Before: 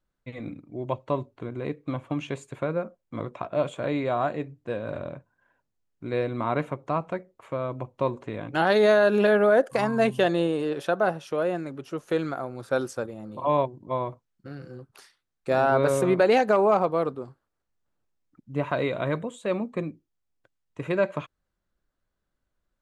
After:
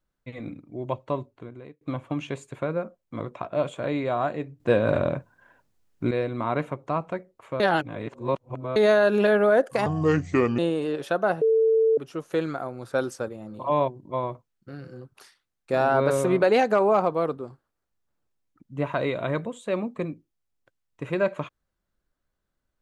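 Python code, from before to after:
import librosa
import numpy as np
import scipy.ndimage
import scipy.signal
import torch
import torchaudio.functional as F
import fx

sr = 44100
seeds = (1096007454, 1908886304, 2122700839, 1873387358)

y = fx.edit(x, sr, fx.fade_out_span(start_s=0.81, length_s=1.0, curve='qsin'),
    fx.clip_gain(start_s=4.6, length_s=1.51, db=10.5),
    fx.reverse_span(start_s=7.6, length_s=1.16),
    fx.speed_span(start_s=9.86, length_s=0.5, speed=0.69),
    fx.bleep(start_s=11.19, length_s=0.56, hz=446.0, db=-16.5), tone=tone)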